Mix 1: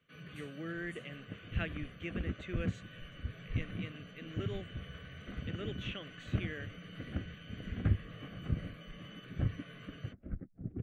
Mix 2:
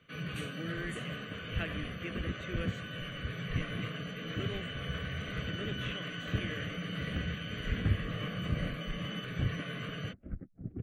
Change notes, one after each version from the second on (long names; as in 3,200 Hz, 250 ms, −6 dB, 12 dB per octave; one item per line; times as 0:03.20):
first sound +11.5 dB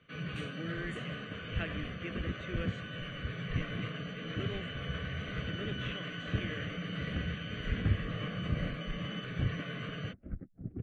master: add high-frequency loss of the air 83 metres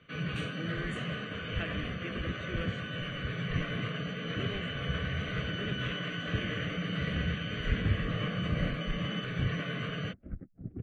first sound +4.5 dB